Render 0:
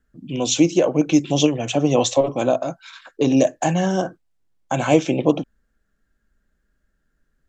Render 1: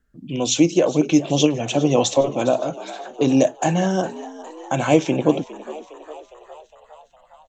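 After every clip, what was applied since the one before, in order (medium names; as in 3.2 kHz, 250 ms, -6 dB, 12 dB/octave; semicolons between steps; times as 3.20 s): frequency-shifting echo 409 ms, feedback 62%, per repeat +76 Hz, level -17 dB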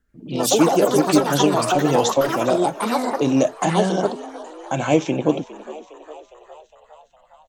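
ever faster or slower copies 89 ms, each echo +5 st, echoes 3; trim -1.5 dB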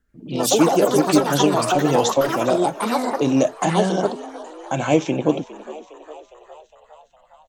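no audible change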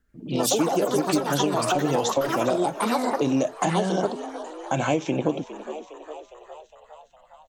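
compression, threshold -19 dBFS, peak gain reduction 9.5 dB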